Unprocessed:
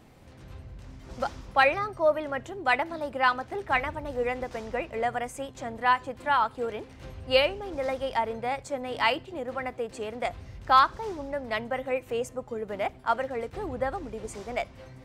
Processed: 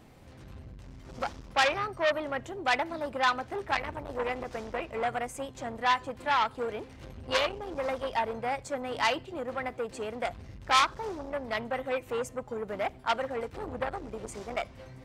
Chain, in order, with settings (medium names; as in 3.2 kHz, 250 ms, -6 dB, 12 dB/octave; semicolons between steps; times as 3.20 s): transformer saturation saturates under 3 kHz